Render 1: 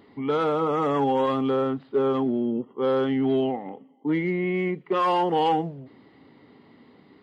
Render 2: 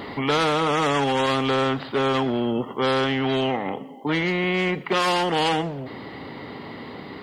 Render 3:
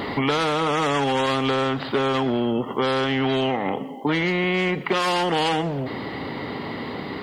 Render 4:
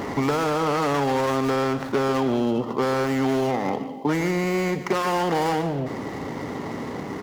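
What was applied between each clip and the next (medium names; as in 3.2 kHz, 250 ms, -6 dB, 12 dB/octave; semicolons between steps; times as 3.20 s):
gain riding 0.5 s; spectrum-flattening compressor 2:1; trim +4.5 dB
compression, threshold -25 dBFS, peak gain reduction 7.5 dB; trim +6 dB
median filter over 15 samples; delay 146 ms -13 dB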